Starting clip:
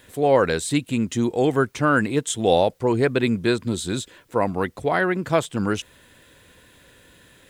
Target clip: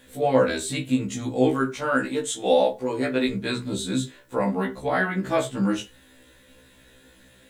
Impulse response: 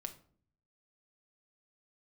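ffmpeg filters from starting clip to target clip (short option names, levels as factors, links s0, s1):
-filter_complex "[0:a]asettb=1/sr,asplit=3[s0][s1][s2];[s0]atrim=end=1.484[s3];[s1]atrim=start=1.48:end=3.29,asetpts=PTS-STARTPTS,afade=t=in:d=0.004:c=qsin,afade=t=out:st=1.806:d=0.004:c=qsin,equalizer=f=100:w=0.65:g=-11.5[s4];[s2]atrim=start=3.286[s5];[s3][s4]acrossfade=d=0.004:c1=hsin:c2=qsin[s6];[s6][s5]acrossfade=d=0.004:c1=qsin:c2=hsin[s7];[1:a]atrim=start_sample=2205,afade=t=out:st=0.21:d=0.01,atrim=end_sample=9702,asetrate=66150,aresample=44100[s8];[s7][s8]afir=irnorm=-1:irlink=0,afftfilt=real='re*1.73*eq(mod(b,3),0)':imag='im*1.73*eq(mod(b,3),0)':win_size=2048:overlap=0.75,volume=2.11"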